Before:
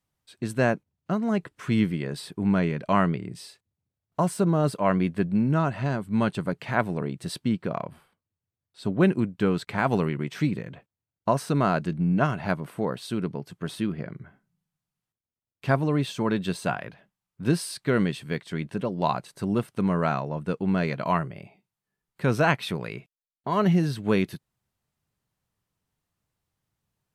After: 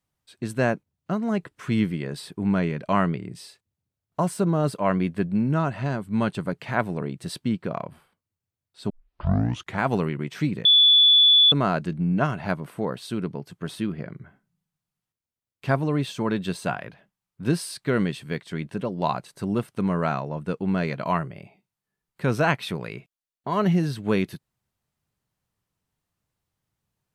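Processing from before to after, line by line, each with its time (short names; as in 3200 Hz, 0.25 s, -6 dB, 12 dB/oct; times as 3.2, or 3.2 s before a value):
8.9 tape start 0.89 s
10.65–11.52 bleep 3450 Hz -12 dBFS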